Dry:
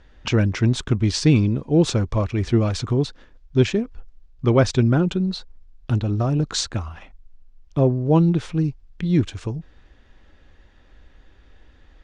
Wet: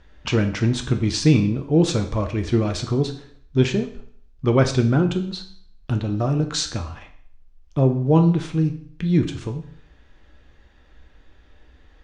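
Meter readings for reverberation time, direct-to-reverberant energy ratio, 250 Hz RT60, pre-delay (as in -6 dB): 0.60 s, 5.0 dB, 0.60 s, 7 ms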